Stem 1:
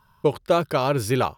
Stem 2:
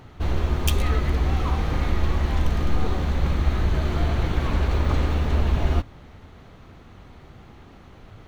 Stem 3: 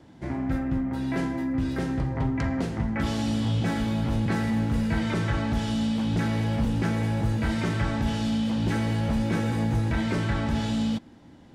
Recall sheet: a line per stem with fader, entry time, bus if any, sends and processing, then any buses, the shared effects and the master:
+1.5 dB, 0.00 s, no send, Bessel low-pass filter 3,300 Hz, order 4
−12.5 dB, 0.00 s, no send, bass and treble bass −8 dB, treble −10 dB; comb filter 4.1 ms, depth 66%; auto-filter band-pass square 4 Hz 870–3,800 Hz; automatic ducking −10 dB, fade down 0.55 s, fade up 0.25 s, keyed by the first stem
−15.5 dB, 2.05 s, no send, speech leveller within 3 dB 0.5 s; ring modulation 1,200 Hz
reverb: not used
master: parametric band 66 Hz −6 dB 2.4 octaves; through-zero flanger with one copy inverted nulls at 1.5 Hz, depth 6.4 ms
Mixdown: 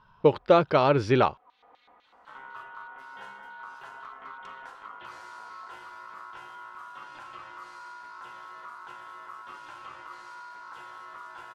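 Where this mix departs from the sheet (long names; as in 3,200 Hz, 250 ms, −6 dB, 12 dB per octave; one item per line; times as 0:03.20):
stem 2 −12.5 dB → −19.5 dB
master: missing through-zero flanger with one copy inverted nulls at 1.5 Hz, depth 6.4 ms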